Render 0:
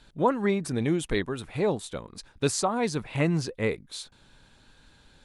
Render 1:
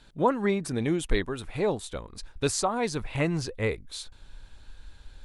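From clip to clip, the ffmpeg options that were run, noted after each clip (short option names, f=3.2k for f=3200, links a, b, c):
-af "asubboost=boost=8:cutoff=64"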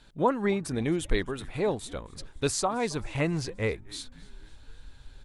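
-filter_complex "[0:a]asplit=5[a][b][c][d][e];[b]adelay=265,afreqshift=-140,volume=-22.5dB[f];[c]adelay=530,afreqshift=-280,volume=-27.1dB[g];[d]adelay=795,afreqshift=-420,volume=-31.7dB[h];[e]adelay=1060,afreqshift=-560,volume=-36.2dB[i];[a][f][g][h][i]amix=inputs=5:normalize=0,volume=-1dB"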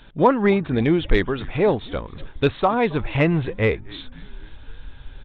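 -filter_complex "[0:a]aresample=8000,aresample=44100,asplit=2[a][b];[b]asoftclip=type=tanh:threshold=-21.5dB,volume=-7dB[c];[a][c]amix=inputs=2:normalize=0,volume=6.5dB"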